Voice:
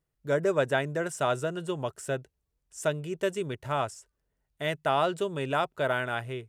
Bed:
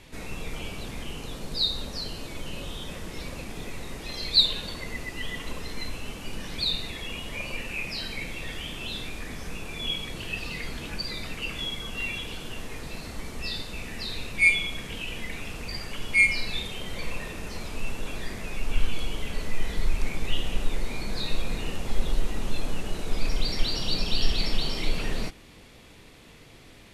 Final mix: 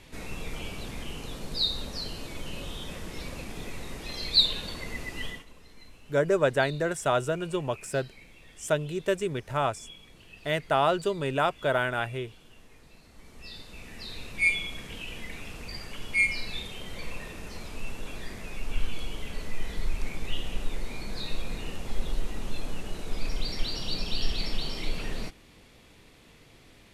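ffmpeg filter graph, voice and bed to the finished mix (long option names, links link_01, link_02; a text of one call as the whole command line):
ffmpeg -i stem1.wav -i stem2.wav -filter_complex "[0:a]adelay=5850,volume=2dB[link_01];[1:a]volume=11.5dB,afade=type=out:start_time=5.25:duration=0.2:silence=0.158489,afade=type=in:start_time=13.09:duration=1.37:silence=0.223872[link_02];[link_01][link_02]amix=inputs=2:normalize=0" out.wav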